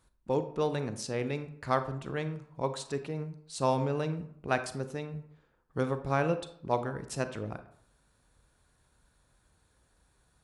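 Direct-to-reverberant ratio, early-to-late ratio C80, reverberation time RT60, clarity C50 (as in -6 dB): 10.0 dB, 15.5 dB, 0.65 s, 12.0 dB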